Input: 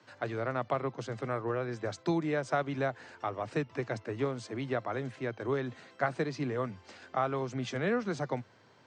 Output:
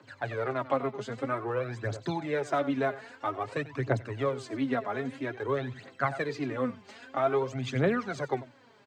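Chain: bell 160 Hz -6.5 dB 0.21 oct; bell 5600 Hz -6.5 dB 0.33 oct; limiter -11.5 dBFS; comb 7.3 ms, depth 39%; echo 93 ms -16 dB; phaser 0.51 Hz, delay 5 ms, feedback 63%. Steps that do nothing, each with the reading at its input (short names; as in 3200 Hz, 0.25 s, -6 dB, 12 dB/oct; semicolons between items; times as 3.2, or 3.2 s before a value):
limiter -11.5 dBFS: input peak -16.0 dBFS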